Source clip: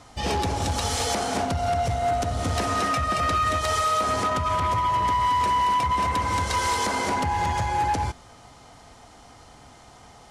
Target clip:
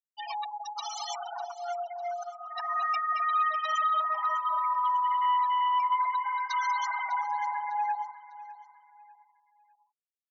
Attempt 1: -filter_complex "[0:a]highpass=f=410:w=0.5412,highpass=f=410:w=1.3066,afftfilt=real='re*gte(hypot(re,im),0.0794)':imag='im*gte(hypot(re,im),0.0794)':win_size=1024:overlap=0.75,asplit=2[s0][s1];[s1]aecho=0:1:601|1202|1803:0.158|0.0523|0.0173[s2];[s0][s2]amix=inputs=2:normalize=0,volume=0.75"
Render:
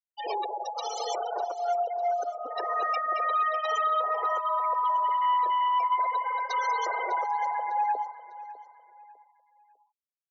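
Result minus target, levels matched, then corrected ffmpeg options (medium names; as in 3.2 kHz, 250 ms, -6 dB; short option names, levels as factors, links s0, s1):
500 Hz band +8.5 dB
-filter_complex "[0:a]highpass=f=830:w=0.5412,highpass=f=830:w=1.3066,afftfilt=real='re*gte(hypot(re,im),0.0794)':imag='im*gte(hypot(re,im),0.0794)':win_size=1024:overlap=0.75,asplit=2[s0][s1];[s1]aecho=0:1:601|1202|1803:0.158|0.0523|0.0173[s2];[s0][s2]amix=inputs=2:normalize=0,volume=0.75"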